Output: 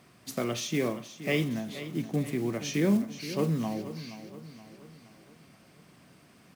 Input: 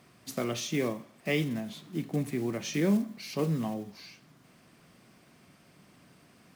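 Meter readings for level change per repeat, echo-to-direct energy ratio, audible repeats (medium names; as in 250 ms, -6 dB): -6.0 dB, -12.0 dB, 4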